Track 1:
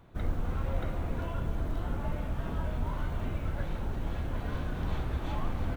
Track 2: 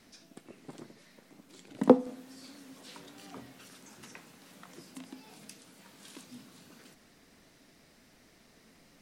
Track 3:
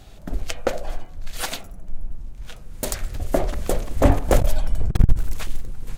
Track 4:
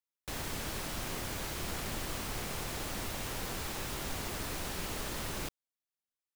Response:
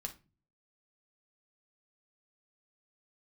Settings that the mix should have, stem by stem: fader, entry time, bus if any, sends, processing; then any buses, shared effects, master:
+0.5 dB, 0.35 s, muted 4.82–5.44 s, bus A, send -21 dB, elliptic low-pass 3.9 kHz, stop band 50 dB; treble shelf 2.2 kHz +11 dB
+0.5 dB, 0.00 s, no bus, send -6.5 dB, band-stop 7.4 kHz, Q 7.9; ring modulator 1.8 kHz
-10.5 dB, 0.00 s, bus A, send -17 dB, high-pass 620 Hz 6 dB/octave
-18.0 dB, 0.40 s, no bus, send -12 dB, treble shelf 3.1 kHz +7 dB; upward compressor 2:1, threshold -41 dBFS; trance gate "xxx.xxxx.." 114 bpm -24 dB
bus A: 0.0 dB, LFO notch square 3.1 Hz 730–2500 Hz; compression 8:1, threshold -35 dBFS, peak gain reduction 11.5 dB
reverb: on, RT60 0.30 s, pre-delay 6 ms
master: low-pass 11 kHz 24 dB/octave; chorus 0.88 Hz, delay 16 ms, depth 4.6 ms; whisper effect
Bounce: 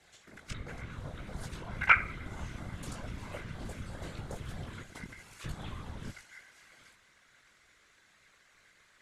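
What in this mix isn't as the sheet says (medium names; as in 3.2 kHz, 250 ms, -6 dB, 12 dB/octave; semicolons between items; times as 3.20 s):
stem 3: send off; stem 4 -18.0 dB -> -28.5 dB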